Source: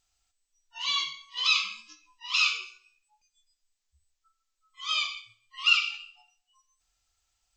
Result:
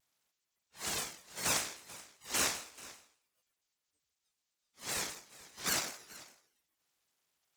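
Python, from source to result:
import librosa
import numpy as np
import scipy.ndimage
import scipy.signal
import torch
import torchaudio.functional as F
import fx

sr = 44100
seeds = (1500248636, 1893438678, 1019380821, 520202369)

y = np.abs(x)
y = fx.spec_gate(y, sr, threshold_db=-25, keep='weak')
y = y + 10.0 ** (-19.0 / 20.0) * np.pad(y, (int(437 * sr / 1000.0), 0))[:len(y)]
y = fx.vibrato_shape(y, sr, shape='saw_down', rate_hz=5.1, depth_cents=160.0)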